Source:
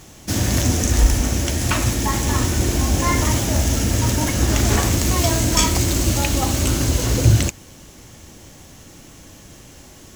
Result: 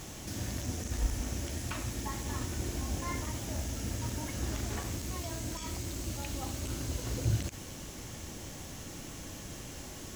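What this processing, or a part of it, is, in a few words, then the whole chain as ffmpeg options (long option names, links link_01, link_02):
de-esser from a sidechain: -filter_complex "[0:a]asplit=2[link_01][link_02];[link_02]highpass=4900,apad=whole_len=447926[link_03];[link_01][link_03]sidechaincompress=threshold=-44dB:ratio=12:attack=4:release=21,volume=-1dB"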